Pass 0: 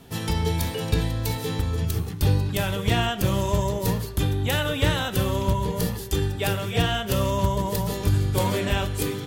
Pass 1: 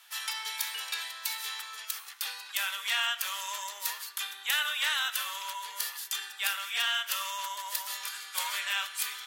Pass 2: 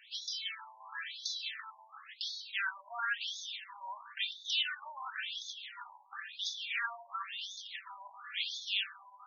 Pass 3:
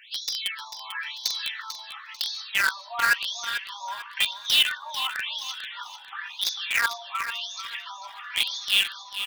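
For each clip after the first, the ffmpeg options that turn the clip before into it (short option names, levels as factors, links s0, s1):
-af "highpass=f=1200:w=0.5412,highpass=f=1200:w=1.3066"
-af "aphaser=in_gain=1:out_gain=1:delay=2.4:decay=0.35:speed=0.24:type=sinusoidal,afftfilt=real='re*between(b*sr/1024,750*pow(4800/750,0.5+0.5*sin(2*PI*0.96*pts/sr))/1.41,750*pow(4800/750,0.5+0.5*sin(2*PI*0.96*pts/sr))*1.41)':imag='im*between(b*sr/1024,750*pow(4800/750,0.5+0.5*sin(2*PI*0.96*pts/sr))/1.41,750*pow(4800/750,0.5+0.5*sin(2*PI*0.96*pts/sr))*1.41)':win_size=1024:overlap=0.75"
-filter_complex "[0:a]asplit=2[s0][s1];[s1]acrusher=bits=4:mix=0:aa=0.000001,volume=0.668[s2];[s0][s2]amix=inputs=2:normalize=0,aecho=1:1:444|888|1332|1776:0.316|0.104|0.0344|0.0114,volume=2.66"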